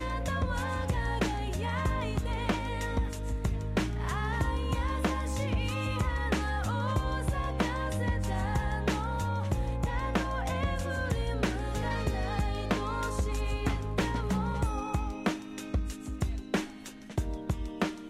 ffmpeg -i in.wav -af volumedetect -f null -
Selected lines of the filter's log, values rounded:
mean_volume: -30.6 dB
max_volume: -14.6 dB